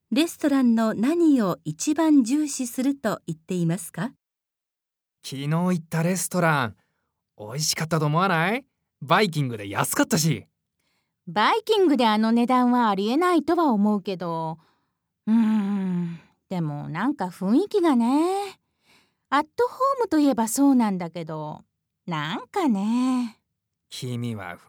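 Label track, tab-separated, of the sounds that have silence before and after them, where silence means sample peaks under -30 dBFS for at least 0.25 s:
5.260000	6.700000	sound
7.400000	8.590000	sound
9.020000	10.390000	sound
11.280000	14.530000	sound
15.270000	16.130000	sound
16.510000	18.490000	sound
19.320000	21.570000	sound
22.080000	23.280000	sound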